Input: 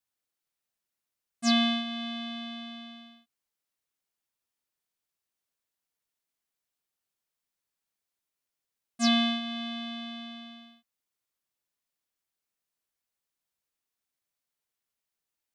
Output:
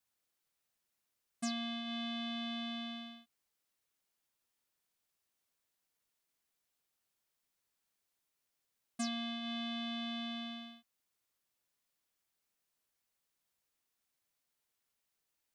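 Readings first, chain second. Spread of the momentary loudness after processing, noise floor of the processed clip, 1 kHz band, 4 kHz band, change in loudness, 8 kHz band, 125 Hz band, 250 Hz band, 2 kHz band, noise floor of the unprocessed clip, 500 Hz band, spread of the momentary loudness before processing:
10 LU, -85 dBFS, -9.5 dB, -9.5 dB, -11.0 dB, -8.5 dB, no reading, -9.5 dB, -9.5 dB, under -85 dBFS, -9.5 dB, 19 LU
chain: compression 12:1, threshold -39 dBFS, peak gain reduction 19 dB; trim +2.5 dB

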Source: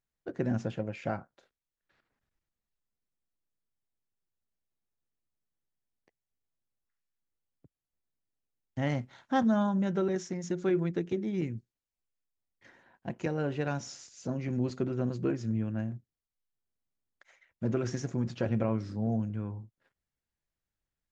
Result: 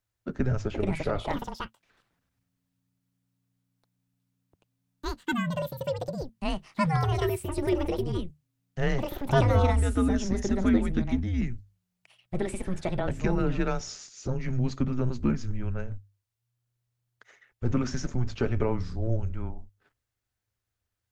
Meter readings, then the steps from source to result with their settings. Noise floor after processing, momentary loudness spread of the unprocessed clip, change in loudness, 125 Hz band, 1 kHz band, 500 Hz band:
-84 dBFS, 11 LU, +3.5 dB, +6.5 dB, +6.0 dB, +4.5 dB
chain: frequency shift -120 Hz; hum notches 50/100 Hz; ever faster or slower copies 564 ms, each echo +7 st, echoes 2; trim +5 dB

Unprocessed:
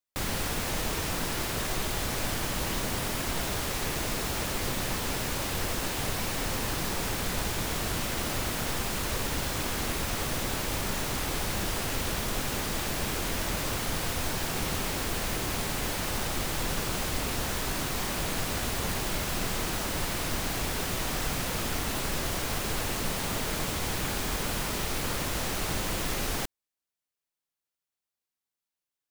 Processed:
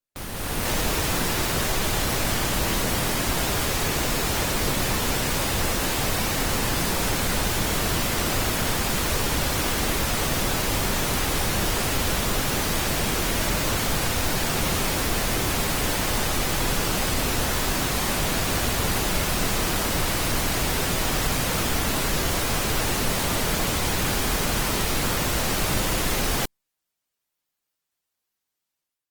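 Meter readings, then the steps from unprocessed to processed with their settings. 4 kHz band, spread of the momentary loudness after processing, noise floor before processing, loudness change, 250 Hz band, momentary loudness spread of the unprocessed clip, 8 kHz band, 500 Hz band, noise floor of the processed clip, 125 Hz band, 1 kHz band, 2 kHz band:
+7.0 dB, 0 LU, under -85 dBFS, +7.0 dB, +7.0 dB, 0 LU, +7.0 dB, +7.0 dB, -83 dBFS, +7.0 dB, +7.0 dB, +7.0 dB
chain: level rider gain up to 10.5 dB; in parallel at -5.5 dB: wavefolder -14.5 dBFS; on the sum: trim -7 dB; Opus 24 kbps 48 kHz

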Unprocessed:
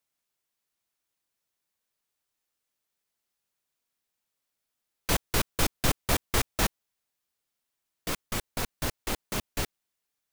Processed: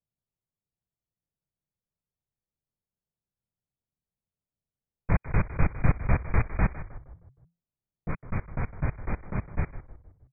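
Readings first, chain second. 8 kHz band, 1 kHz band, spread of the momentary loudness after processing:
under -40 dB, -2.0 dB, 16 LU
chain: brick-wall FIR low-pass 2.5 kHz; resonant low shelf 210 Hz +8.5 dB, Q 1.5; frequency-shifting echo 156 ms, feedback 50%, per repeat -34 Hz, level -13 dB; level-controlled noise filter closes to 550 Hz, open at -17 dBFS; trim -2 dB

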